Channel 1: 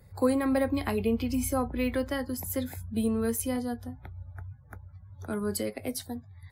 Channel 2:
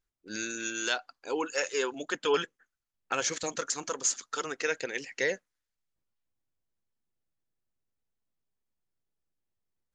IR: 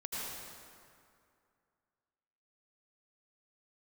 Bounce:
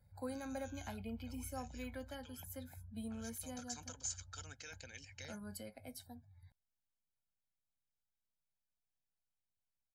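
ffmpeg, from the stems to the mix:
-filter_complex "[0:a]volume=-17.5dB[a];[1:a]alimiter=limit=-20dB:level=0:latency=1:release=18,acrossover=split=260|3000[b][c][d];[c]acompressor=threshold=-42dB:ratio=6[e];[b][e][d]amix=inputs=3:normalize=0,volume=-12.5dB,afade=t=in:st=3.34:d=0.36:silence=0.281838[f];[a][f]amix=inputs=2:normalize=0,aecho=1:1:1.3:0.74"

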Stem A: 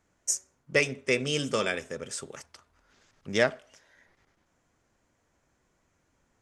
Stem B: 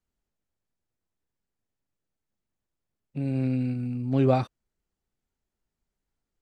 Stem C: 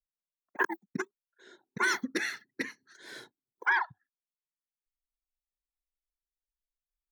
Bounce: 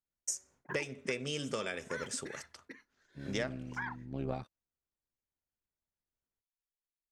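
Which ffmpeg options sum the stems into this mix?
-filter_complex "[0:a]agate=range=-33dB:threshold=-54dB:ratio=3:detection=peak,acompressor=threshold=-31dB:ratio=5,volume=-2dB[a];[1:a]aeval=exprs='0.376*(cos(1*acos(clip(val(0)/0.376,-1,1)))-cos(1*PI/2))+0.106*(cos(2*acos(clip(val(0)/0.376,-1,1)))-cos(2*PI/2))':c=same,tremolo=f=72:d=0.71,volume=-14dB,asplit=2[b][c];[2:a]highshelf=f=4.1k:g=-10,adelay=100,volume=-7.5dB[d];[c]apad=whole_len=318294[e];[d][e]sidechaingate=range=-7dB:threshold=-45dB:ratio=16:detection=peak[f];[a][b][f]amix=inputs=3:normalize=0"

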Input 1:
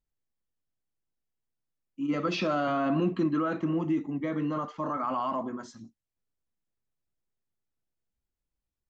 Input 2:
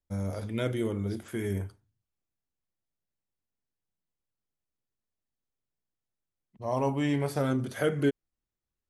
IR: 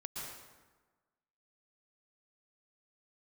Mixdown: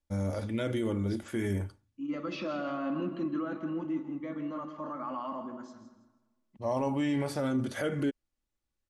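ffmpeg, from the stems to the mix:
-filter_complex "[0:a]highshelf=f=5.2k:g=-5.5,volume=-9.5dB,asplit=3[a][b][c];[b]volume=-9dB[d];[c]volume=-10dB[e];[1:a]lowpass=9.3k,volume=1.5dB[f];[2:a]atrim=start_sample=2205[g];[d][g]afir=irnorm=-1:irlink=0[h];[e]aecho=0:1:163|326|489|652:1|0.3|0.09|0.027[i];[a][f][h][i]amix=inputs=4:normalize=0,aecho=1:1:3.5:0.35,alimiter=limit=-22dB:level=0:latency=1:release=48"

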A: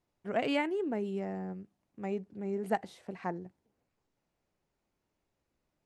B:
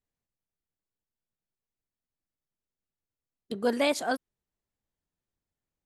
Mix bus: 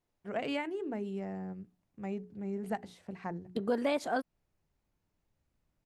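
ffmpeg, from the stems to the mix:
-filter_complex "[0:a]bandreject=f=60:t=h:w=6,bandreject=f=120:t=h:w=6,bandreject=f=180:t=h:w=6,bandreject=f=240:t=h:w=6,bandreject=f=300:t=h:w=6,bandreject=f=360:t=h:w=6,bandreject=f=420:t=h:w=6,asubboost=boost=3:cutoff=210,volume=-2.5dB[a];[1:a]highshelf=f=3k:g=-11,adelay=50,volume=2.5dB[b];[a][b]amix=inputs=2:normalize=0,acompressor=threshold=-30dB:ratio=2.5"

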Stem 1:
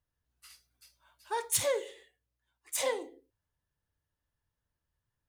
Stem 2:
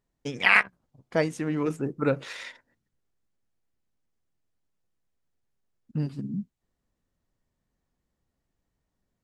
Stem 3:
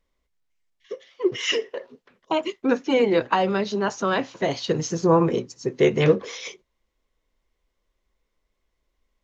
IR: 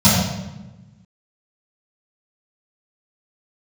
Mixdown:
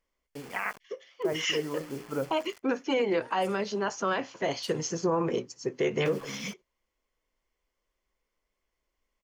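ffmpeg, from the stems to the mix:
-filter_complex "[0:a]alimiter=level_in=1.5dB:limit=-24dB:level=0:latency=1:release=415,volume=-1.5dB,adelay=1900,volume=-15dB[a];[1:a]lowpass=1.2k,bandreject=f=60:t=h:w=6,bandreject=f=120:t=h:w=6,bandreject=f=180:t=h:w=6,bandreject=f=240:t=h:w=6,bandreject=f=300:t=h:w=6,bandreject=f=360:t=h:w=6,bandreject=f=420:t=h:w=6,bandreject=f=480:t=h:w=6,acrusher=bits=6:mix=0:aa=0.000001,adelay=100,volume=-3.5dB[b];[2:a]volume=-2.5dB[c];[a][b][c]amix=inputs=3:normalize=0,lowshelf=f=300:g=-7.5,bandreject=f=3.8k:w=7.1,alimiter=limit=-18.5dB:level=0:latency=1:release=63"

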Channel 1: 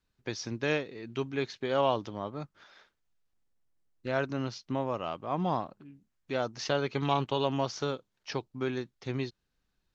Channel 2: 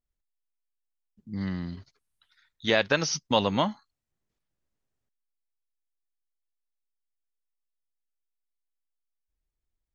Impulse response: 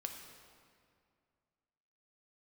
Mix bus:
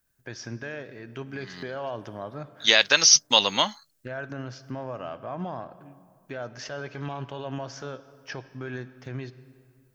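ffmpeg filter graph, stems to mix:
-filter_complex "[0:a]equalizer=f=125:t=o:w=0.33:g=6,equalizer=f=630:t=o:w=0.33:g=7,equalizer=f=1.6k:t=o:w=0.33:g=11,equalizer=f=4k:t=o:w=0.33:g=-7,alimiter=limit=-24dB:level=0:latency=1:release=68,volume=-4dB,asplit=3[a][b][c];[b]volume=-3.5dB[d];[1:a]highpass=f=380:p=1,crystalizer=i=8:c=0,volume=-1.5dB[e];[c]apad=whole_len=438550[f];[e][f]sidechaincompress=threshold=-47dB:ratio=8:attack=6.4:release=219[g];[2:a]atrim=start_sample=2205[h];[d][h]afir=irnorm=-1:irlink=0[i];[a][g][i]amix=inputs=3:normalize=0"

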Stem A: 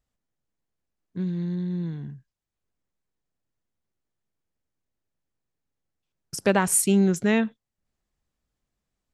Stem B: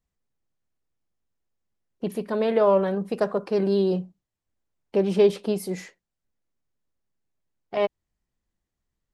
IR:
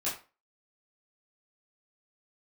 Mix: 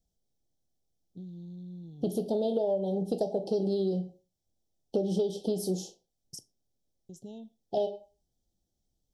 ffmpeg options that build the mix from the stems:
-filter_complex "[0:a]acompressor=threshold=-30dB:ratio=8,volume=-12dB,asplit=3[a][b][c];[a]atrim=end=6.43,asetpts=PTS-STARTPTS,afade=t=out:st=6.426:d=0.004:c=hsin[d];[b]atrim=start=6.43:end=7.09,asetpts=PTS-STARTPTS,volume=0[e];[c]atrim=start=7.09,asetpts=PTS-STARTPTS,afade=t=in:d=0.004:c=hsin[f];[d][e][f]concat=n=3:v=0:a=1,asplit=2[g][h];[h]volume=-18.5dB[i];[1:a]bandreject=f=2.9k:w=11,volume=0dB,asplit=2[j][k];[k]volume=-10dB[l];[2:a]atrim=start_sample=2205[m];[i][l]amix=inputs=2:normalize=0[n];[n][m]afir=irnorm=-1:irlink=0[o];[g][j][o]amix=inputs=3:normalize=0,asuperstop=centerf=1600:order=20:qfactor=0.76,equalizer=f=5.7k:t=o:w=0.22:g=6.5,acompressor=threshold=-25dB:ratio=16"

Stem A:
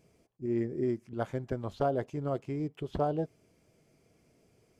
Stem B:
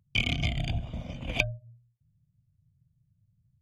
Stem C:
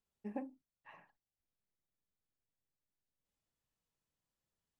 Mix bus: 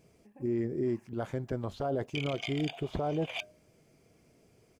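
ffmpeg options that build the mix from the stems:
-filter_complex "[0:a]volume=2.5dB,asplit=2[a][b];[1:a]highpass=f=610:w=0.5412,highpass=f=610:w=1.3066,acompressor=threshold=-32dB:ratio=6,adelay=2000,volume=-0.5dB[c];[2:a]aemphasis=mode=production:type=75kf,volume=-5.5dB[d];[b]apad=whole_len=211328[e];[d][e]sidechaingate=range=-10dB:threshold=-55dB:ratio=16:detection=peak[f];[a][c][f]amix=inputs=3:normalize=0,alimiter=limit=-23dB:level=0:latency=1:release=22"

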